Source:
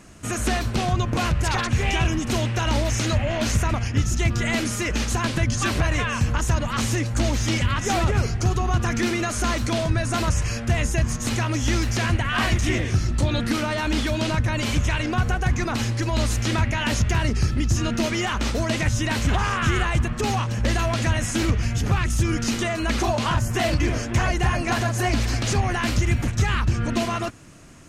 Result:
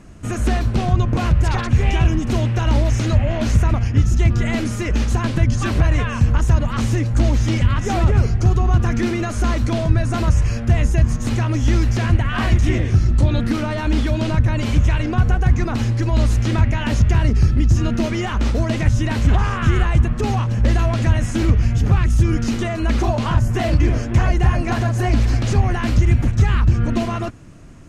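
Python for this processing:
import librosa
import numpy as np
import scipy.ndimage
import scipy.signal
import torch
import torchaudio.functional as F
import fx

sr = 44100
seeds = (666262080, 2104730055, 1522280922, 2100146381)

y = fx.tilt_eq(x, sr, slope=-2.0)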